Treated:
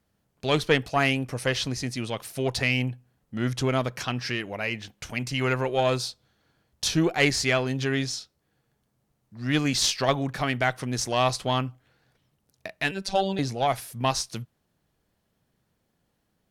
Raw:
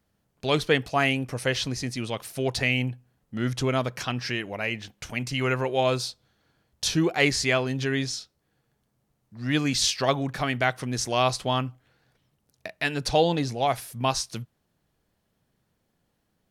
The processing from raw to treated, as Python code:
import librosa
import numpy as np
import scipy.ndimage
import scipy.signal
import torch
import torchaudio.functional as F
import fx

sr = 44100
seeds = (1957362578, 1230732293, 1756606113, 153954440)

y = fx.robotise(x, sr, hz=193.0, at=(12.91, 13.39))
y = fx.cheby_harmonics(y, sr, harmonics=(4,), levels_db=(-22,), full_scale_db=-6.5)